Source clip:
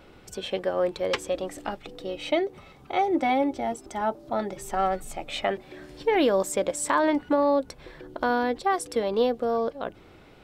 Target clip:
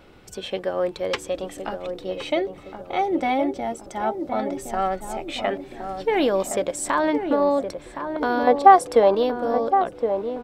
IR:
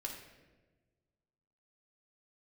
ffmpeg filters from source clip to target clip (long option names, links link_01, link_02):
-filter_complex "[0:a]asettb=1/sr,asplit=3[link_01][link_02][link_03];[link_01]atrim=end=8.474[link_04];[link_02]atrim=start=8.47:end=9.15,asetpts=PTS-STARTPTS,afade=type=in:duration=0.004:curve=qsin,afade=type=out:start_time=0.676:duration=0.004:curve=qsin,equalizer=frequency=760:width=0.67:gain=14[link_05];[link_03]atrim=start=9.146[link_06];[link_04][link_05]acrossfade=duration=0.004:curve1=hsin:curve2=qsin[link_07];[link_07][link_06]acrossfade=duration=0.004:curve1=qsin:curve2=hsin,asplit=2[link_08][link_09];[link_09]adelay=1067,lowpass=frequency=900:poles=1,volume=-6dB,asplit=2[link_10][link_11];[link_11]adelay=1067,lowpass=frequency=900:poles=1,volume=0.51,asplit=2[link_12][link_13];[link_13]adelay=1067,lowpass=frequency=900:poles=1,volume=0.51,asplit=2[link_14][link_15];[link_15]adelay=1067,lowpass=frequency=900:poles=1,volume=0.51,asplit=2[link_16][link_17];[link_17]adelay=1067,lowpass=frequency=900:poles=1,volume=0.51,asplit=2[link_18][link_19];[link_19]adelay=1067,lowpass=frequency=900:poles=1,volume=0.51[link_20];[link_08][link_10][link_12][link_14][link_16][link_18][link_20]amix=inputs=7:normalize=0,volume=1dB"